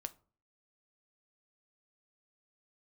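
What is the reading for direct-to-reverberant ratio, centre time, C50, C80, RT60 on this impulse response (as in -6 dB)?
10.0 dB, 3 ms, 20.5 dB, 26.5 dB, 0.40 s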